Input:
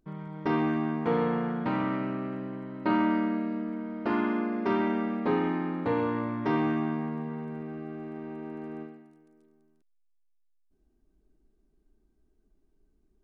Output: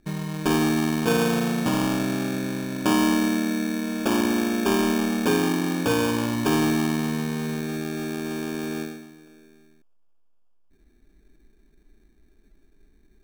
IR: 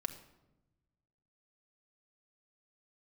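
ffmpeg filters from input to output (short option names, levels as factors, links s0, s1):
-filter_complex "[0:a]equalizer=f=2600:w=0.32:g=-4.5,asplit=2[s0][s1];[s1]acompressor=threshold=0.0141:ratio=6,volume=1.33[s2];[s0][s2]amix=inputs=2:normalize=0,acrusher=samples=22:mix=1:aa=0.000001,volume=1.5"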